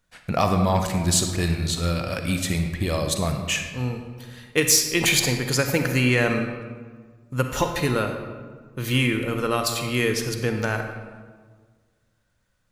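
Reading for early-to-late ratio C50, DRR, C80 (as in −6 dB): 6.0 dB, 5.0 dB, 7.5 dB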